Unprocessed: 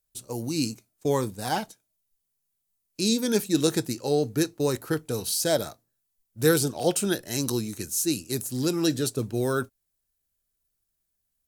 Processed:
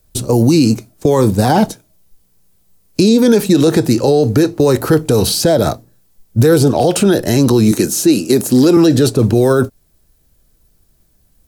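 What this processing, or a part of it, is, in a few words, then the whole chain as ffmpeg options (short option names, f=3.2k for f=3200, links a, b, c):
mastering chain: -filter_complex "[0:a]asettb=1/sr,asplit=3[a][b][c];[a]atrim=end=7.714[d];[b]atrim=start=7.71:end=8.77,asetpts=PTS-STARTPTS,afade=t=in:d=0.004:c=qsin,afade=t=out:st=1.056:d=0.004:c=qsin,highpass=230[e];[c]atrim=start=8.766[f];[d][e]acrossfade=d=0.004:c1=hsin:c2=qsin[g];[g][f]acrossfade=d=0.004:c1=qsin:c2=hsin,equalizer=f=4.6k:t=o:w=0.77:g=2.5,acrossover=split=470|1000|3700[h][i][j][k];[h]acompressor=threshold=-35dB:ratio=4[l];[i]acompressor=threshold=-29dB:ratio=4[m];[j]acompressor=threshold=-37dB:ratio=4[n];[k]acompressor=threshold=-37dB:ratio=4[o];[l][m][n][o]amix=inputs=4:normalize=0,acompressor=threshold=-29dB:ratio=2,tiltshelf=f=830:g=7,alimiter=level_in=26dB:limit=-1dB:release=50:level=0:latency=1,volume=-1.5dB"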